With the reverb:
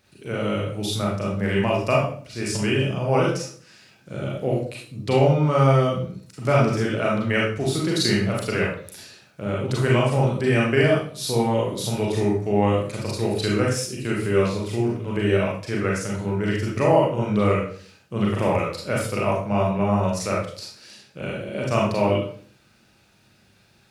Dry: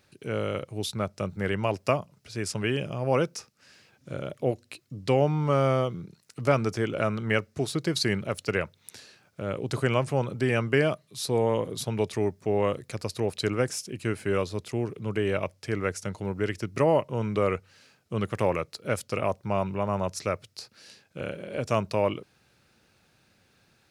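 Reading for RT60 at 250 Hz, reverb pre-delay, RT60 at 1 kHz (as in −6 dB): 0.65 s, 32 ms, 0.45 s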